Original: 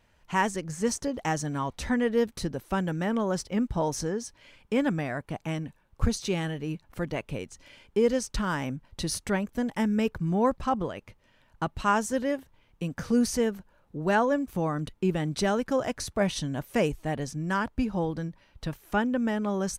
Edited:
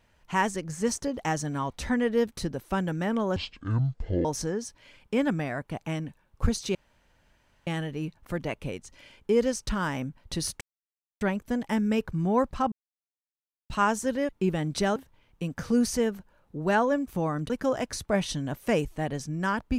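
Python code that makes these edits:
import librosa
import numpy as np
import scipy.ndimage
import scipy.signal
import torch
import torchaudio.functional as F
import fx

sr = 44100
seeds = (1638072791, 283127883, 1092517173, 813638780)

y = fx.edit(x, sr, fx.speed_span(start_s=3.36, length_s=0.48, speed=0.54),
    fx.insert_room_tone(at_s=6.34, length_s=0.92),
    fx.insert_silence(at_s=9.28, length_s=0.6),
    fx.silence(start_s=10.79, length_s=0.98),
    fx.move(start_s=14.9, length_s=0.67, to_s=12.36), tone=tone)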